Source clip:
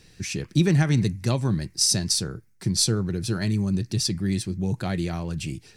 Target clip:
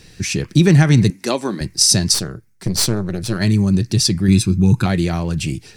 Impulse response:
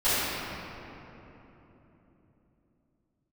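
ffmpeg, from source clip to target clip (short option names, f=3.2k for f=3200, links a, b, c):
-filter_complex "[0:a]asettb=1/sr,asplit=3[a][b][c];[a]atrim=end=1.104[d];[b]atrim=start=1.1:end=1.61,asetpts=PTS-STARTPTS,afade=t=in:d=0.004:c=qsin,afade=t=out:st=0.506:d=0.004:c=qsin,highpass=f=260:w=0.5412,highpass=f=260:w=1.3066[e];[c]atrim=start=1.606[f];[d][e]acrossfade=d=0.004:c1=hsin:c2=qsin[g];[g][f]acrossfade=d=0.004:c1=qsin:c2=hsin,asplit=3[h][i][j];[h]afade=t=out:st=2.13:d=0.02[k];[i]aeval=exprs='(tanh(10*val(0)+0.8)-tanh(0.8))/10':c=same,afade=t=in:st=2.13:d=0.02,afade=t=out:st=3.39:d=0.02[l];[j]afade=t=in:st=3.39:d=0.02[m];[k][l][m]amix=inputs=3:normalize=0,asettb=1/sr,asplit=3[n][o][p];[n]atrim=end=4.284[q];[o]atrim=start=4.28:end=4.86,asetpts=PTS-STARTPTS,afade=t=in:d=0.004:c=qsin,afade=t=out:st=0.576:d=0.004:c=qsin,aecho=1:1:0.8:0.79,atrim=end_sample=25578[r];[p]atrim=start=4.856[s];[q][r]acrossfade=d=0.004:c1=hsin:c2=qsin[t];[t][s]acrossfade=d=0.004:c1=qsin:c2=hsin,alimiter=level_in=10dB:limit=-1dB:release=50:level=0:latency=1,volume=-1dB"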